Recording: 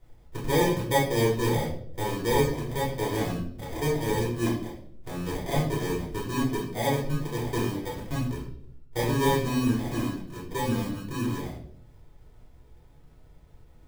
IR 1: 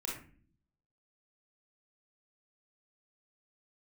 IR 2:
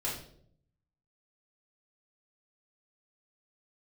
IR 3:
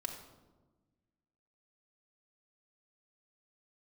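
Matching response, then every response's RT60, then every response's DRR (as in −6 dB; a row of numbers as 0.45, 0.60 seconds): 2; non-exponential decay, 0.65 s, 1.2 s; −3.5, −6.5, 0.0 decibels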